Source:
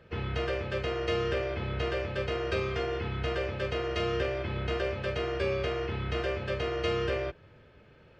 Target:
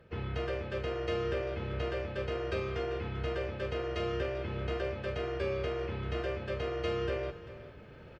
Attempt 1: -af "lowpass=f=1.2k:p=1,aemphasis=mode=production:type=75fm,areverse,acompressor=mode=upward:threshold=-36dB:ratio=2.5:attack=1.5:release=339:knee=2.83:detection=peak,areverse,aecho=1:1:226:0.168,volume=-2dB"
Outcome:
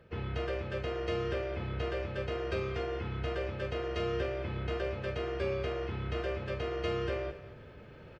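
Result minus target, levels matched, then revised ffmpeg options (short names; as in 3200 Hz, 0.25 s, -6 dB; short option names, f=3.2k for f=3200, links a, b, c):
echo 0.166 s early
-af "lowpass=f=1.2k:p=1,aemphasis=mode=production:type=75fm,areverse,acompressor=mode=upward:threshold=-36dB:ratio=2.5:attack=1.5:release=339:knee=2.83:detection=peak,areverse,aecho=1:1:392:0.168,volume=-2dB"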